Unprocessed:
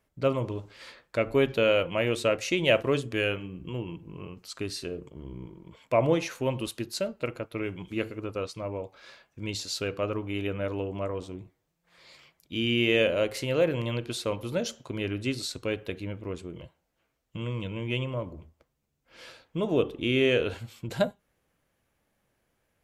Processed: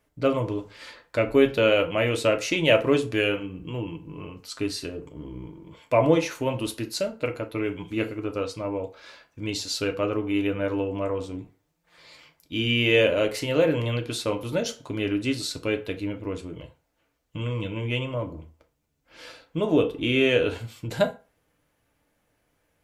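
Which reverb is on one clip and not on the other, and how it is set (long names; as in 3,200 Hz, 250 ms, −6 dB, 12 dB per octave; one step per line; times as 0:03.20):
feedback delay network reverb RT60 0.33 s, low-frequency decay 0.8×, high-frequency decay 0.7×, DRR 4.5 dB
level +2.5 dB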